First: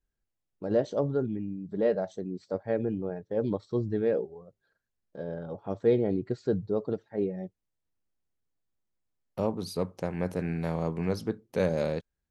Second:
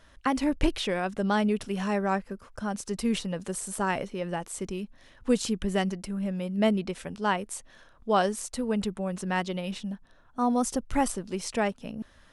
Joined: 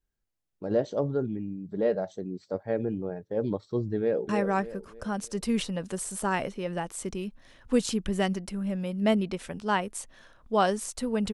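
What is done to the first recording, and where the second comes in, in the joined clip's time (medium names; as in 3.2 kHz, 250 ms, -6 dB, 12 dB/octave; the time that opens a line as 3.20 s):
first
3.97–4.29 s: echo throw 300 ms, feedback 40%, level -7 dB
4.29 s: go over to second from 1.85 s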